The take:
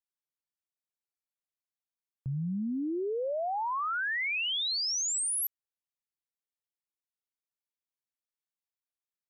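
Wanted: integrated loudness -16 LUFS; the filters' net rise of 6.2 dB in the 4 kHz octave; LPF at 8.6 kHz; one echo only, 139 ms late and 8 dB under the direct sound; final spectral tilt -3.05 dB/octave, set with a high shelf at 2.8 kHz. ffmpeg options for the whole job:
-af "lowpass=8600,highshelf=f=2800:g=5.5,equalizer=f=4000:t=o:g=3.5,aecho=1:1:139:0.398,volume=3.16"

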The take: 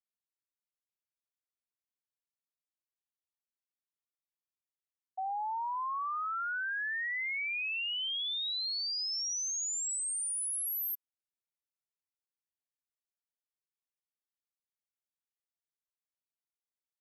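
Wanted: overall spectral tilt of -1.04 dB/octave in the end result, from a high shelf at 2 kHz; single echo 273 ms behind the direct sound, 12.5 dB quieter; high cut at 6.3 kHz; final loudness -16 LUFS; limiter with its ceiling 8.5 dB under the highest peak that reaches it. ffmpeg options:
-af "lowpass=6300,highshelf=f=2000:g=-7,alimiter=level_in=7.5:limit=0.0631:level=0:latency=1,volume=0.133,aecho=1:1:273:0.237,volume=21.1"

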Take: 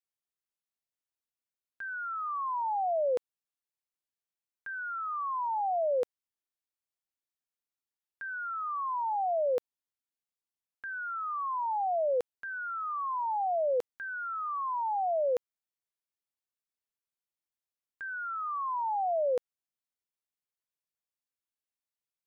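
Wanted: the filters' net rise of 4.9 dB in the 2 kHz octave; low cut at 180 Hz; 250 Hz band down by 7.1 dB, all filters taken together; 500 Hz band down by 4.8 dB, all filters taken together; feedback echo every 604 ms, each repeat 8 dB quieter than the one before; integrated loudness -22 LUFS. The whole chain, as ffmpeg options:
-af "highpass=180,equalizer=f=250:t=o:g=-7,equalizer=f=500:t=o:g=-5.5,equalizer=f=2000:t=o:g=9,aecho=1:1:604|1208|1812|2416|3020:0.398|0.159|0.0637|0.0255|0.0102,volume=3.55"

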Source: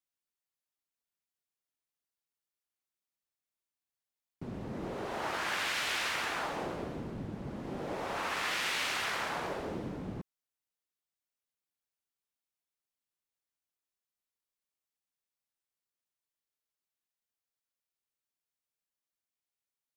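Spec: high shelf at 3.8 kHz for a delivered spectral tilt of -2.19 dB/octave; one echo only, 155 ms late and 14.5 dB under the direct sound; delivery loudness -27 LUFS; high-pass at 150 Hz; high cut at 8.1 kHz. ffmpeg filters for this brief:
-af "highpass=150,lowpass=8100,highshelf=f=3800:g=5,aecho=1:1:155:0.188,volume=2.24"

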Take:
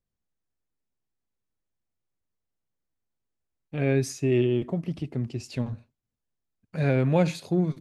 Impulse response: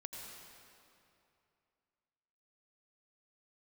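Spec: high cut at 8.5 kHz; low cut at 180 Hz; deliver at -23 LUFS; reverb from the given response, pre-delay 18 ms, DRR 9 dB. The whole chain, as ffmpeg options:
-filter_complex "[0:a]highpass=180,lowpass=8500,asplit=2[s0][s1];[1:a]atrim=start_sample=2205,adelay=18[s2];[s1][s2]afir=irnorm=-1:irlink=0,volume=0.473[s3];[s0][s3]amix=inputs=2:normalize=0,volume=1.78"

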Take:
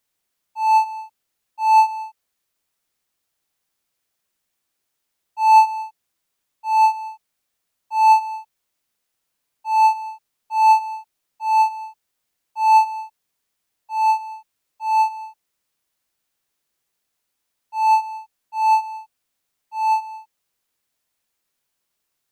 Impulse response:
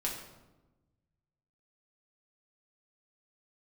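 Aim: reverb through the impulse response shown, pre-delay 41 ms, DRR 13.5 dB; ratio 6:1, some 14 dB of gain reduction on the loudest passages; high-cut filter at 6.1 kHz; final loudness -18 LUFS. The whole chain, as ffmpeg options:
-filter_complex "[0:a]lowpass=6100,acompressor=threshold=0.0631:ratio=6,asplit=2[s0][s1];[1:a]atrim=start_sample=2205,adelay=41[s2];[s1][s2]afir=irnorm=-1:irlink=0,volume=0.141[s3];[s0][s3]amix=inputs=2:normalize=0,volume=3.35"

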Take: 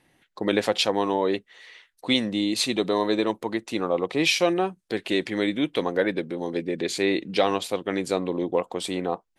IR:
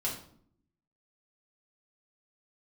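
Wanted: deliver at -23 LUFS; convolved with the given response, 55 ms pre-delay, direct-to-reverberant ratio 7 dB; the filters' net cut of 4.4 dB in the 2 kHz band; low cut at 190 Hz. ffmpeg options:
-filter_complex "[0:a]highpass=190,equalizer=f=2000:t=o:g=-5.5,asplit=2[s0][s1];[1:a]atrim=start_sample=2205,adelay=55[s2];[s1][s2]afir=irnorm=-1:irlink=0,volume=0.266[s3];[s0][s3]amix=inputs=2:normalize=0,volume=1.33"

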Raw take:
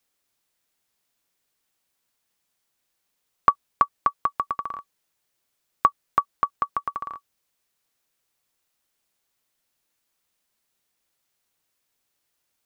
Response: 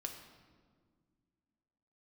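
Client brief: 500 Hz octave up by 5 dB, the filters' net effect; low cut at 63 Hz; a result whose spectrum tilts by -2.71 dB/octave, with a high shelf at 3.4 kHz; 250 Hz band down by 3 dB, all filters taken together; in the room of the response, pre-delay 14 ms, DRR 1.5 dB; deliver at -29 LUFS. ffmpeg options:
-filter_complex "[0:a]highpass=63,equalizer=f=250:t=o:g=-8,equalizer=f=500:t=o:g=8.5,highshelf=f=3400:g=-7,asplit=2[s0][s1];[1:a]atrim=start_sample=2205,adelay=14[s2];[s1][s2]afir=irnorm=-1:irlink=0,volume=1.06[s3];[s0][s3]amix=inputs=2:normalize=0,volume=0.501"

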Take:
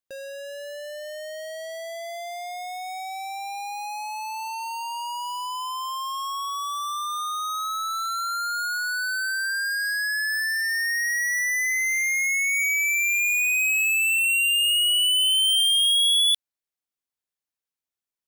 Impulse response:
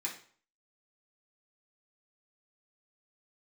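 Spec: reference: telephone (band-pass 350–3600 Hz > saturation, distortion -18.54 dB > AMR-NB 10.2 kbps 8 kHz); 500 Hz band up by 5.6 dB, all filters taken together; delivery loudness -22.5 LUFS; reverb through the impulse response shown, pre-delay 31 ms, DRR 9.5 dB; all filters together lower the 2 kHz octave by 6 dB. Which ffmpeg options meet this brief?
-filter_complex "[0:a]equalizer=f=500:t=o:g=9,equalizer=f=2000:t=o:g=-7.5,asplit=2[s0][s1];[1:a]atrim=start_sample=2205,adelay=31[s2];[s1][s2]afir=irnorm=-1:irlink=0,volume=0.266[s3];[s0][s3]amix=inputs=2:normalize=0,highpass=350,lowpass=3600,asoftclip=threshold=0.0631,volume=2.51" -ar 8000 -c:a libopencore_amrnb -b:a 10200

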